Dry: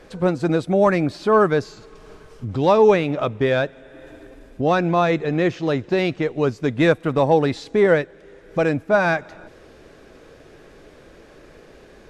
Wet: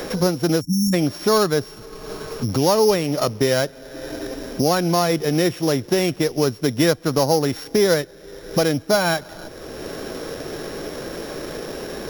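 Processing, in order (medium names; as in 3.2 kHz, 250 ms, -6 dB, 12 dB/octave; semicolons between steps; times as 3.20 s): sorted samples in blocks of 8 samples; spectral selection erased 0.61–0.94 s, 320–5400 Hz; three bands compressed up and down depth 70%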